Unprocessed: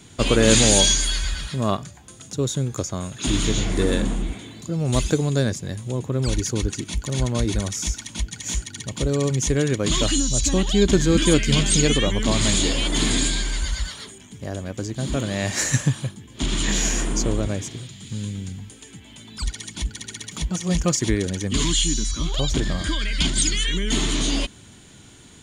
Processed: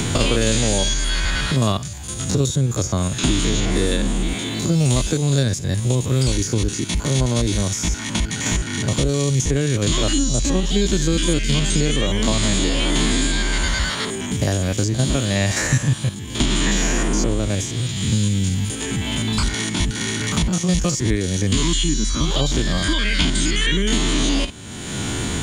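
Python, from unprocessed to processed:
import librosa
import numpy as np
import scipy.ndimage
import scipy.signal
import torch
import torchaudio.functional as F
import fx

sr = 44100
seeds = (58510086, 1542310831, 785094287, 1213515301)

y = fx.spec_steps(x, sr, hold_ms=50)
y = fx.band_squash(y, sr, depth_pct=100)
y = y * librosa.db_to_amplitude(3.0)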